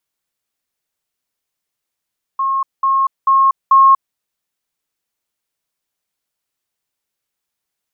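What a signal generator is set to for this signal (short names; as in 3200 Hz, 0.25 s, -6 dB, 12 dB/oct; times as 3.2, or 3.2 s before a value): level ladder 1080 Hz -14 dBFS, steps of 3 dB, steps 4, 0.24 s 0.20 s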